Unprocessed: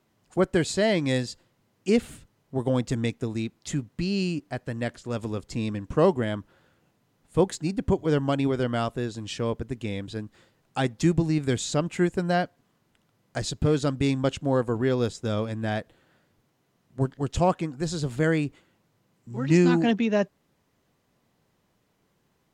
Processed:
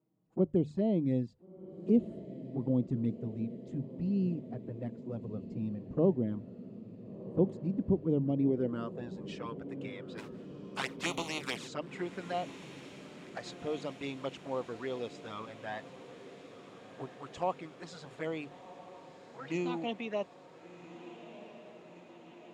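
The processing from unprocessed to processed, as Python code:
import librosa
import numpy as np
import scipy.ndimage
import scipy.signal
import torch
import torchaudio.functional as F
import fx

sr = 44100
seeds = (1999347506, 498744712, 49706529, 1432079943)

p1 = fx.spec_flatten(x, sr, power=0.41, at=(10.17, 11.67), fade=0.02)
p2 = fx.peak_eq(p1, sr, hz=1600.0, db=-4.5, octaves=0.45)
p3 = fx.hum_notches(p2, sr, base_hz=50, count=3)
p4 = fx.env_flanger(p3, sr, rest_ms=6.4, full_db=-19.5)
p5 = fx.filter_sweep_bandpass(p4, sr, from_hz=220.0, to_hz=1400.0, start_s=8.37, end_s=9.43, q=0.92)
p6 = p5 + fx.echo_diffused(p5, sr, ms=1396, feedback_pct=70, wet_db=-14, dry=0)
y = p6 * 10.0 ** (-2.0 / 20.0)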